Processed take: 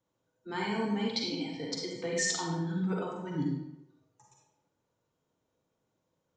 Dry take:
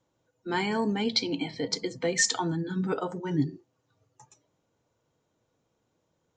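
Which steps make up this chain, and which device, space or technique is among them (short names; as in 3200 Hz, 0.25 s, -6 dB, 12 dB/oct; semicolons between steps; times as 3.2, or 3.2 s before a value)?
bathroom (reverb RT60 0.85 s, pre-delay 38 ms, DRR -1.5 dB); gain -8.5 dB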